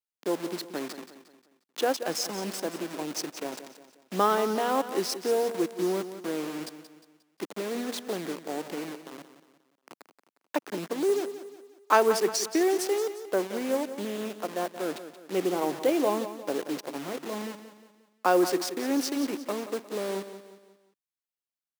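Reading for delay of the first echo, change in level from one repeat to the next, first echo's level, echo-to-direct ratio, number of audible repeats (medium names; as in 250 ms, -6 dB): 178 ms, -7.5 dB, -12.0 dB, -11.0 dB, 4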